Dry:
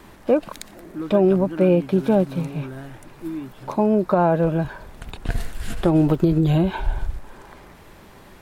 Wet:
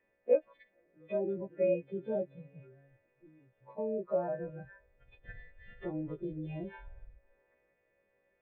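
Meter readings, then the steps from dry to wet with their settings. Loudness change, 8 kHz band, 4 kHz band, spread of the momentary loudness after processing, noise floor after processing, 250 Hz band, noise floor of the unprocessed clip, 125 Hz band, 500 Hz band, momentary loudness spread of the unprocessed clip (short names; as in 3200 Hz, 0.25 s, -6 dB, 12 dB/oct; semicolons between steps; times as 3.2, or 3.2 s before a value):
-14.5 dB, n/a, under -25 dB, 22 LU, -76 dBFS, -21.5 dB, -46 dBFS, -23.5 dB, -12.5 dB, 18 LU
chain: frequency quantiser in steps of 2 st; vocal tract filter e; spectral noise reduction 13 dB; gain -3 dB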